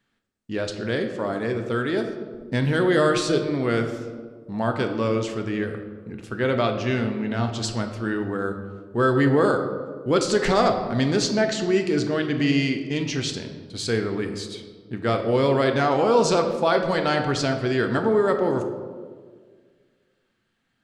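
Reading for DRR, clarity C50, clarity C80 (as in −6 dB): 5.0 dB, 7.5 dB, 9.5 dB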